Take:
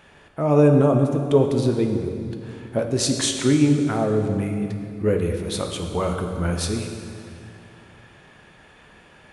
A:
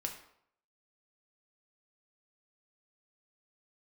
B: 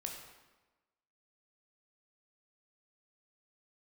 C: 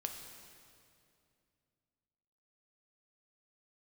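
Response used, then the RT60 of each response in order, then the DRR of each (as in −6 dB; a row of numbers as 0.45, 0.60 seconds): C; 0.70, 1.2, 2.5 seconds; 2.5, 1.0, 3.5 decibels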